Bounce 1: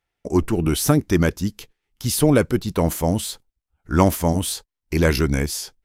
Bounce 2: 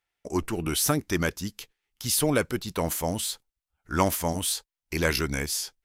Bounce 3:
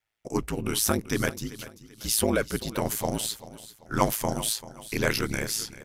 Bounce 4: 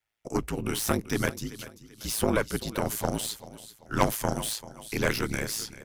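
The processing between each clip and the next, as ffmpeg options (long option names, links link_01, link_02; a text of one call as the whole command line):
ffmpeg -i in.wav -af "tiltshelf=frequency=660:gain=-5,volume=-6dB" out.wav
ffmpeg -i in.wav -af "aeval=exprs='val(0)*sin(2*PI*55*n/s)':channel_layout=same,aecho=1:1:389|778|1167:0.158|0.0571|0.0205,volume=2.5dB" out.wav
ffmpeg -i in.wav -filter_complex "[0:a]acrossover=split=320|1900[link_01][link_02][link_03];[link_02]aeval=exprs='0.422*(cos(1*acos(clip(val(0)/0.422,-1,1)))-cos(1*PI/2))+0.0668*(cos(6*acos(clip(val(0)/0.422,-1,1)))-cos(6*PI/2))':channel_layout=same[link_04];[link_03]volume=27dB,asoftclip=hard,volume=-27dB[link_05];[link_01][link_04][link_05]amix=inputs=3:normalize=0,volume=-1dB" out.wav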